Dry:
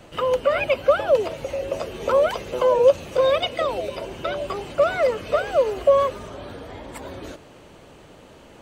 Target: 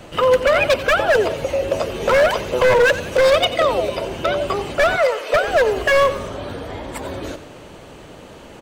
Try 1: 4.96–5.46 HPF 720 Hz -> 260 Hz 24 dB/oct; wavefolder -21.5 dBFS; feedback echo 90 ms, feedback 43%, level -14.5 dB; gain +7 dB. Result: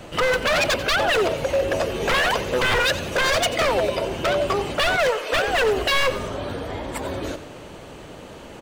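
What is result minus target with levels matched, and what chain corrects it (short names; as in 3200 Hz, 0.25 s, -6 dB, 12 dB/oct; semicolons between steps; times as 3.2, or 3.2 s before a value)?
wavefolder: distortion +11 dB
4.96–5.46 HPF 720 Hz -> 260 Hz 24 dB/oct; wavefolder -15.5 dBFS; feedback echo 90 ms, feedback 43%, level -14.5 dB; gain +7 dB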